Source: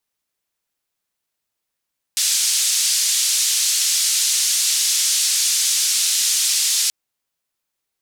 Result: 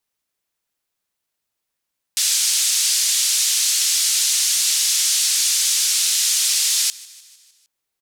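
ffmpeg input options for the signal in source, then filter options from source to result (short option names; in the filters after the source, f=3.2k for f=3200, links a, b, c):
-f lavfi -i "anoisesrc=c=white:d=4.73:r=44100:seed=1,highpass=f=4600,lowpass=f=7500,volume=-5.3dB"
-af "aecho=1:1:152|304|456|608|760:0.0841|0.0496|0.0293|0.0173|0.0102"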